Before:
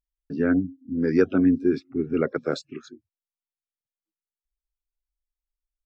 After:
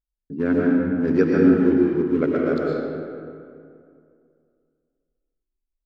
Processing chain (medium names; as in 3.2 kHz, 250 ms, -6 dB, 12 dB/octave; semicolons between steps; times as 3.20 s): local Wiener filter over 41 samples; algorithmic reverb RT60 2.4 s, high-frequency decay 0.55×, pre-delay 75 ms, DRR -3.5 dB